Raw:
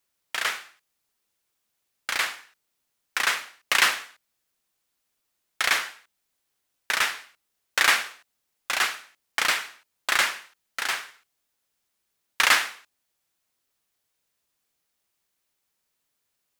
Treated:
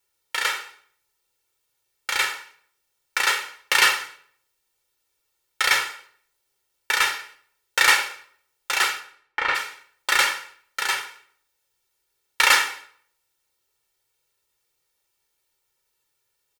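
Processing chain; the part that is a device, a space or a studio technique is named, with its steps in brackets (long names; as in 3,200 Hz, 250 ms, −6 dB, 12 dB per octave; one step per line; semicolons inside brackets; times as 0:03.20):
0:08.99–0:09.54: low-pass filter 1,100 Hz → 2,400 Hz 12 dB per octave
microphone above a desk (comb filter 2.2 ms, depth 83%; convolution reverb RT60 0.60 s, pre-delay 3 ms, DRR 6 dB)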